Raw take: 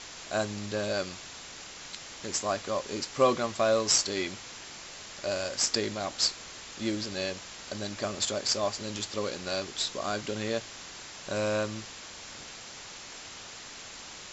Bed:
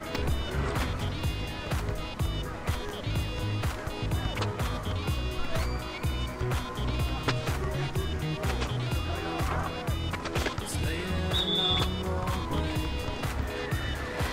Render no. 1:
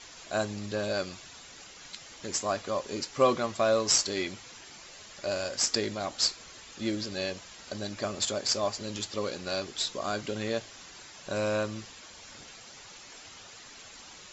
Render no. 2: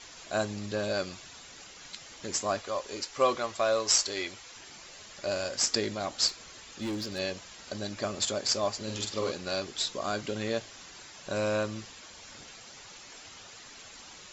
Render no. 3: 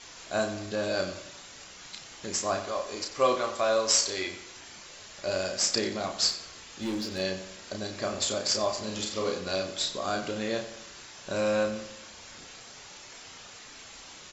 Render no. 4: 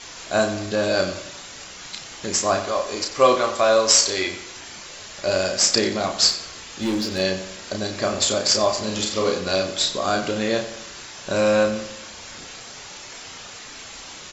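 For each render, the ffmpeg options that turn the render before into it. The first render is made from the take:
-af "afftdn=nr=8:nf=-45"
-filter_complex "[0:a]asettb=1/sr,asplit=3[a][b][c];[a]atrim=end=2.604[d];[b]atrim=start=2.6:end=4.56,asetpts=PTS-STARTPTS,afade=t=in:d=0.004:c=qsin,afade=t=out:st=1.956:d=0.004:c=qsin,equalizer=f=170:t=o:w=1.7:g=-11.5[e];[c]atrim=start=4.556[f];[d][e]acrossfade=d=0.004:c1=hsin:c2=qsin[g];[g][f]acrossfade=d=0.004:c1=qsin:c2=hsin,asettb=1/sr,asplit=3[h][i][j];[h]atrim=end=6.284[k];[i]atrim=start=6.28:end=7.19,asetpts=PTS-STARTPTS,afade=t=in:d=0.004:c=qsin,afade=t=out:st=0.906:d=0.004:c=qsin,asoftclip=type=hard:threshold=-30dB[l];[j]atrim=start=7.186[m];[k][l]acrossfade=d=0.004:c1=hsin:c2=qsin[n];[n][m]acrossfade=d=0.004:c1=qsin:c2=hsin,asettb=1/sr,asplit=3[o][p][q];[o]atrim=end=8.834[r];[p]atrim=start=8.83:end=9.32,asetpts=PTS-STARTPTS,afade=t=in:d=0.004:c=qsin,afade=t=out:st=0.486:d=0.004:c=qsin,asplit=2[s][t];[t]adelay=46,volume=-4dB[u];[s][u]amix=inputs=2:normalize=0,atrim=end_sample=21609[v];[q]atrim=start=9.316[w];[r][v]acrossfade=d=0.004:c1=hsin:c2=qsin[x];[x][w]acrossfade=d=0.004:c1=qsin:c2=hsin"
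-filter_complex "[0:a]asplit=2[a][b];[b]adelay=32,volume=-5dB[c];[a][c]amix=inputs=2:normalize=0,asplit=2[d][e];[e]adelay=90,lowpass=f=4.2k:p=1,volume=-11dB,asplit=2[f][g];[g]adelay=90,lowpass=f=4.2k:p=1,volume=0.5,asplit=2[h][i];[i]adelay=90,lowpass=f=4.2k:p=1,volume=0.5,asplit=2[j][k];[k]adelay=90,lowpass=f=4.2k:p=1,volume=0.5,asplit=2[l][m];[m]adelay=90,lowpass=f=4.2k:p=1,volume=0.5[n];[d][f][h][j][l][n]amix=inputs=6:normalize=0"
-af "volume=8.5dB,alimiter=limit=-3dB:level=0:latency=1"

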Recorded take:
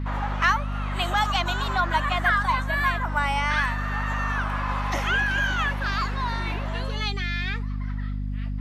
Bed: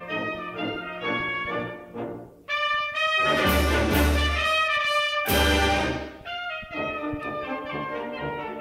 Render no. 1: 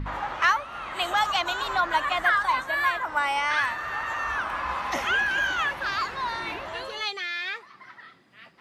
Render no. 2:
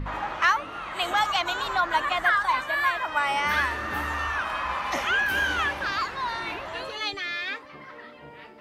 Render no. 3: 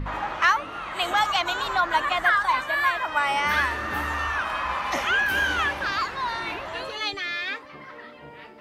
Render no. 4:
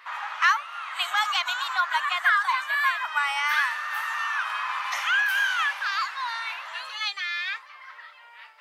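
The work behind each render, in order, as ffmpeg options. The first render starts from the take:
-af "bandreject=f=50:t=h:w=4,bandreject=f=100:t=h:w=4,bandreject=f=150:t=h:w=4,bandreject=f=200:t=h:w=4,bandreject=f=250:t=h:w=4"
-filter_complex "[1:a]volume=-15dB[a];[0:a][a]amix=inputs=2:normalize=0"
-af "volume=1.5dB"
-af "highpass=f=1k:w=0.5412,highpass=f=1k:w=1.3066"

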